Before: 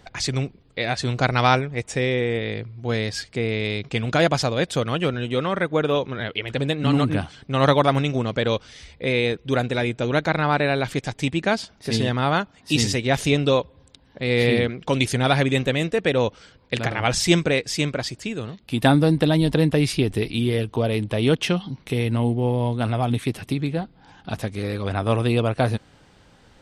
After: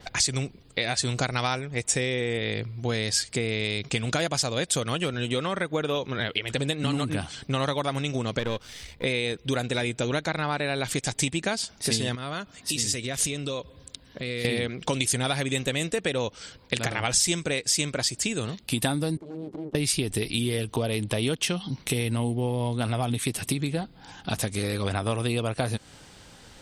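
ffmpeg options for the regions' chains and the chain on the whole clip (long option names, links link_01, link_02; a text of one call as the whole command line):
ffmpeg -i in.wav -filter_complex "[0:a]asettb=1/sr,asplit=3[link_01][link_02][link_03];[link_01]atrim=end=8.394[link_04];[link_02]atrim=start=8.39:end=9.04,asetpts=PTS-STARTPTS,afade=type=in:duration=0.004:curve=qsin,afade=type=out:start_time=0.646:duration=0.004:curve=qsin,aeval=exprs='if(lt(val(0),0),0.447*val(0),val(0))':channel_layout=same,acrossover=split=4900[link_05][link_06];[link_06]acompressor=threshold=-52dB:ratio=4:attack=1:release=60[link_07];[link_05][link_07]amix=inputs=2:normalize=0,equalizer=frequency=5700:width_type=o:width=2.1:gain=-4[link_08];[link_03]atrim=start=9.036[link_09];[link_04][link_08]acrossfade=duration=0.004:curve1=hsin:curve2=qsin[link_10];[link_10][link_09]acrossfade=duration=0.004:curve1=qsin:curve2=hsin,asettb=1/sr,asplit=3[link_11][link_12][link_13];[link_11]atrim=end=12.154[link_14];[link_12]atrim=start=12.15:end=14.45,asetpts=PTS-STARTPTS,afade=type=in:duration=0.004:curve=qsin,afade=type=out:start_time=2.296:duration=0.004:curve=qsin,bandreject=frequency=850:width=5.1,acompressor=threshold=-33dB:ratio=4:attack=3.2:release=140:knee=1:detection=peak[link_15];[link_13]atrim=start=14.446[link_16];[link_14][link_15]acrossfade=duration=0.004:curve1=hsin:curve2=qsin[link_17];[link_17][link_16]acrossfade=duration=0.004:curve1=qsin:curve2=hsin,asettb=1/sr,asplit=3[link_18][link_19][link_20];[link_18]atrim=end=19.174[link_21];[link_19]atrim=start=19.17:end=19.75,asetpts=PTS-STARTPTS,afade=type=in:duration=0.004:curve=qsin,afade=type=out:start_time=0.576:duration=0.004:curve=qsin,acompressor=threshold=-27dB:ratio=3:attack=3.2:release=140:knee=1:detection=peak,aeval=exprs='abs(val(0))':channel_layout=same,bandpass=frequency=290:width_type=q:width=2.2[link_22];[link_20]atrim=start=19.746[link_23];[link_21][link_22]acrossfade=duration=0.004:curve1=hsin:curve2=qsin[link_24];[link_24][link_23]acrossfade=duration=0.004:curve1=qsin:curve2=hsin,highshelf=frequency=3800:gain=11.5,acompressor=threshold=-26dB:ratio=6,adynamicequalizer=threshold=0.00398:dfrequency=8300:dqfactor=1.6:tfrequency=8300:tqfactor=1.6:attack=5:release=100:ratio=0.375:range=3.5:mode=boostabove:tftype=bell,volume=2dB" out.wav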